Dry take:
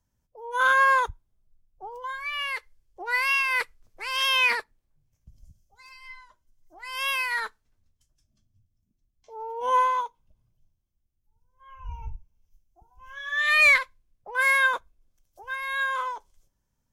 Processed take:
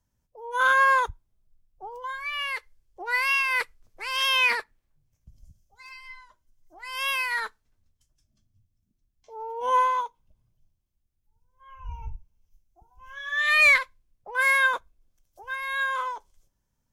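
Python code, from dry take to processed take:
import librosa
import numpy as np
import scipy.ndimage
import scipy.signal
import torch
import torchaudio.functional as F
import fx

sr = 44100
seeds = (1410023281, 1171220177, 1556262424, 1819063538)

y = fx.dynamic_eq(x, sr, hz=1900.0, q=0.76, threshold_db=-56.0, ratio=4.0, max_db=6, at=(4.59, 6.0), fade=0.02)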